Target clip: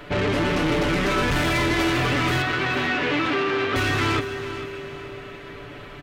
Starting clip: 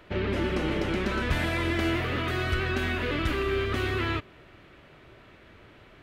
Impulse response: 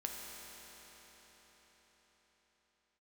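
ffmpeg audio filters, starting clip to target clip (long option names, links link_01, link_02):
-filter_complex "[0:a]aecho=1:1:6.9:0.7,asoftclip=type=tanh:threshold=-30dB,asettb=1/sr,asplit=3[link_01][link_02][link_03];[link_01]atrim=end=0.644[link_04];[link_02]atrim=start=0.64:end=1.67,asetpts=PTS-STARTPTS,afade=type=in:duration=0.004:curve=qsin,afade=type=out:start_time=1.026:duration=0.004:curve=qsin,aeval=exprs='0.0316*(cos(1*acos(clip(val(0)/0.0316,-1,1)))-cos(1*PI/2))+0.00112*(cos(5*acos(clip(val(0)/0.0316,-1,1)))-cos(5*PI/2))+0.000251*(cos(8*acos(clip(val(0)/0.0316,-1,1)))-cos(8*PI/2))':channel_layout=same[link_05];[link_03]atrim=start=1.666[link_06];[link_04][link_05]acrossfade=duration=0.004:curve1=hsin:curve2=qsin[link_07];[link_07][link_06]acrossfade=duration=0.004:curve1=qsin:curve2=hsin,asettb=1/sr,asplit=3[link_08][link_09][link_10];[link_08]atrim=end=2.424[link_11];[link_09]atrim=start=2.42:end=3.76,asetpts=PTS-STARTPTS,afade=type=in:duration=0.004:curve=qsin,afade=type=out:start_time=1.336:duration=0.004:curve=qsin,highpass=190,lowpass=3700[link_12];[link_10]atrim=start=3.756[link_13];[link_11][link_12]acrossfade=duration=0.004:curve1=hsin:curve2=qsin[link_14];[link_14][link_13]acrossfade=duration=0.004:curve1=qsin:curve2=hsin,aecho=1:1:446|892|1338|1784:0.224|0.0806|0.029|0.0104,asplit=2[link_15][link_16];[1:a]atrim=start_sample=2205[link_17];[link_16][link_17]afir=irnorm=-1:irlink=0,volume=-9.5dB[link_18];[link_15][link_18]amix=inputs=2:normalize=0,volume=9dB"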